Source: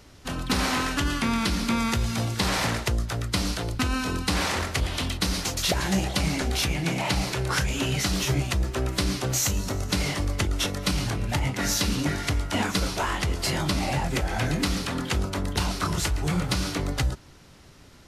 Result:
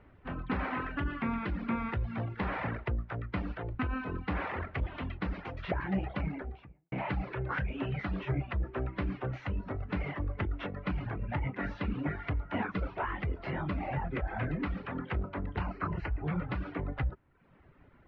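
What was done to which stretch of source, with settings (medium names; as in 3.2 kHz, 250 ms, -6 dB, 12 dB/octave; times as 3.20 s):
6.09–6.92 s: studio fade out
15.61–16.25 s: Butterworth band-stop 3.5 kHz, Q 4.2
whole clip: inverse Chebyshev low-pass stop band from 8.7 kHz, stop band 70 dB; reverb removal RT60 0.78 s; trim -6 dB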